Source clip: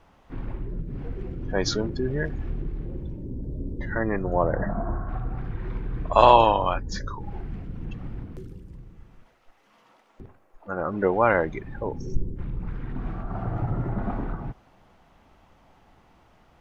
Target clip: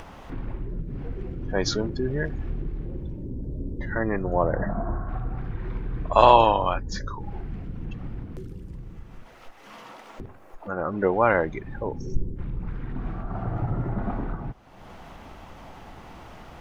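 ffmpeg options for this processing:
ffmpeg -i in.wav -af "acompressor=mode=upward:threshold=-30dB:ratio=2.5" out.wav

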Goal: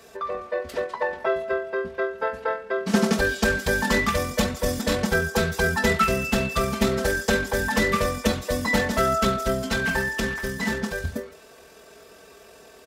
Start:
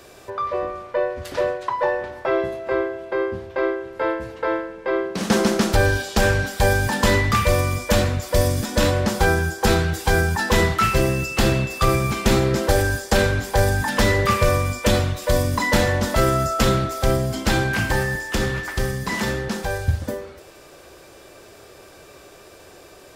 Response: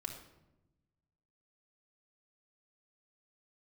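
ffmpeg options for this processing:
-af "aecho=1:1:4.5:0.93,atempo=1.8,highpass=53,volume=-5dB"

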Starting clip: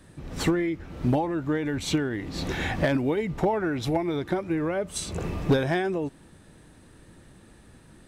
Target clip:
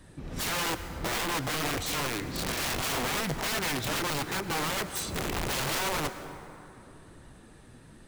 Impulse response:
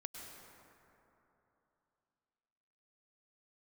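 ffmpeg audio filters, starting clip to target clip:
-filter_complex "[0:a]flanger=delay=1:depth=7.5:regen=65:speed=1.1:shape=sinusoidal,aeval=exprs='(mod(29.9*val(0)+1,2)-1)/29.9':channel_layout=same,asplit=2[link_01][link_02];[1:a]atrim=start_sample=2205[link_03];[link_02][link_03]afir=irnorm=-1:irlink=0,volume=-0.5dB[link_04];[link_01][link_04]amix=inputs=2:normalize=0"

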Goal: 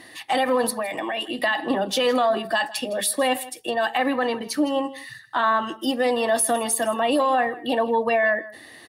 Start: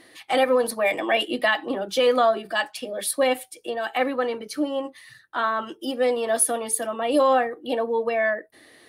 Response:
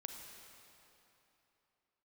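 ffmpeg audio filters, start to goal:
-filter_complex "[0:a]highpass=47,aecho=1:1:1.1:0.41,alimiter=limit=-18.5dB:level=0:latency=1:release=47,asplit=3[link_01][link_02][link_03];[link_01]afade=type=out:start_time=0.7:duration=0.02[link_04];[link_02]acompressor=threshold=-32dB:ratio=3,afade=type=in:start_time=0.7:duration=0.02,afade=type=out:start_time=1.4:duration=0.02[link_05];[link_03]afade=type=in:start_time=1.4:duration=0.02[link_06];[link_04][link_05][link_06]amix=inputs=3:normalize=0,aecho=1:1:161:0.119,volume=5.5dB"

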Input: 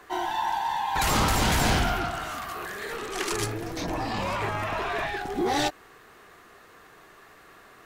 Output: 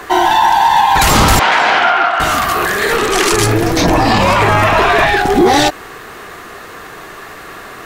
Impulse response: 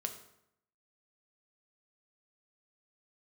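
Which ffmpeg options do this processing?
-filter_complex "[0:a]asettb=1/sr,asplit=3[link_01][link_02][link_03];[link_01]atrim=end=1.394[link_04];[link_02]atrim=start=1.39:end=2.2,asetpts=PTS-STARTPTS,afade=type=in:duration=0.004:curve=qsin,afade=type=out:start_time=0.806:duration=0.004:curve=qsin,highpass=750,lowpass=2400[link_05];[link_03]atrim=start=2.196[link_06];[link_04][link_05]acrossfade=duration=0.004:curve1=hsin:curve2=qsin[link_07];[link_07][link_06]acrossfade=duration=0.004:curve1=qsin:curve2=hsin,alimiter=level_in=21.5dB:limit=-1dB:release=50:level=0:latency=1,volume=-1dB"

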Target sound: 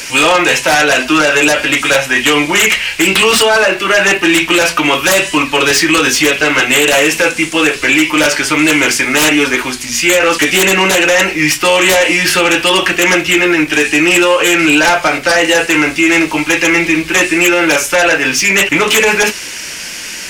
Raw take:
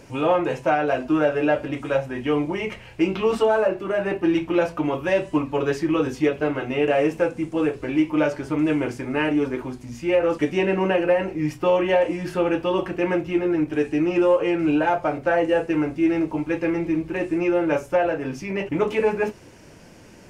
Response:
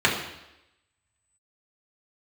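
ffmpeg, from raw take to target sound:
-filter_complex "[0:a]equalizer=frequency=110:width=2.8:gain=-13,acrossover=split=210|1700[link_01][link_02][link_03];[link_03]aeval=exprs='0.158*sin(PI/2*8.91*val(0)/0.158)':channel_layout=same[link_04];[link_01][link_02][link_04]amix=inputs=3:normalize=0,alimiter=level_in=10.5dB:limit=-1dB:release=50:level=0:latency=1,volume=-1dB"

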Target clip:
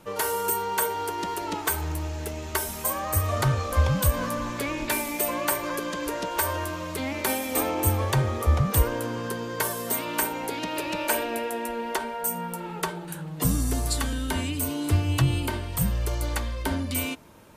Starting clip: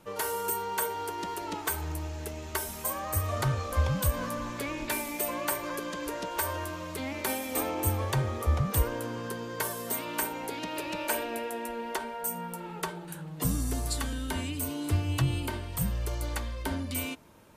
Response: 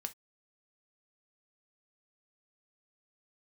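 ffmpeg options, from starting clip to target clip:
-filter_complex "[0:a]asettb=1/sr,asplit=3[link_01][link_02][link_03];[link_01]atrim=end=1.794[link_04];[link_02]atrim=start=1.79:end=2.42,asetpts=PTS-STARTPTS,afade=type=in:duration=0.004:curve=qsin,afade=type=out:start_time=0.626:duration=0.004:curve=qsin,volume=28.5dB,asoftclip=hard,volume=-28.5dB[link_05];[link_03]atrim=start=2.416[link_06];[link_04][link_05]acrossfade=duration=0.004:curve1=hsin:curve2=qsin[link_07];[link_07][link_06]acrossfade=duration=0.004:curve1=qsin:curve2=hsin,volume=5dB"

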